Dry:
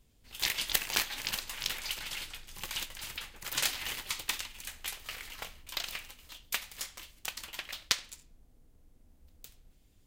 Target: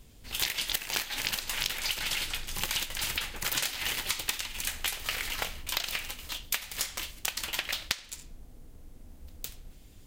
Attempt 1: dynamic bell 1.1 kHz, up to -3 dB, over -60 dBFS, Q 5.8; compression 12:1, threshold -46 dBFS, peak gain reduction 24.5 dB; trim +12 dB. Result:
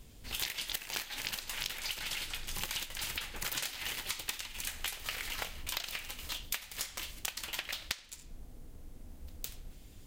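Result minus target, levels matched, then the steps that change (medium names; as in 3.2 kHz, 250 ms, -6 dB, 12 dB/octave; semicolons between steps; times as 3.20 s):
compression: peak gain reduction +6.5 dB
change: compression 12:1, threshold -39 dBFS, peak gain reduction 18.5 dB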